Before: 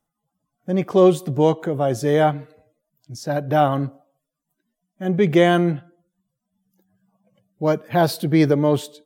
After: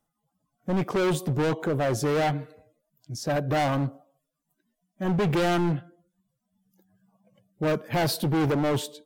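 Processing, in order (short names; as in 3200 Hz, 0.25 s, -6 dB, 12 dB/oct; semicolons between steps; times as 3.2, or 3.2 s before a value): hard clip -21.5 dBFS, distortion -4 dB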